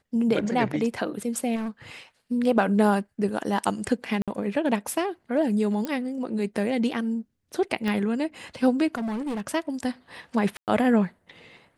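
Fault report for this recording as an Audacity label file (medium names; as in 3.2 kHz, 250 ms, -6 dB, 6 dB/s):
1.550000	1.690000	clipped -27.5 dBFS
4.220000	4.280000	dropout 56 ms
5.850000	5.850000	pop -16 dBFS
7.880000	7.880000	pop -16 dBFS
8.970000	9.410000	clipped -26.5 dBFS
10.570000	10.680000	dropout 108 ms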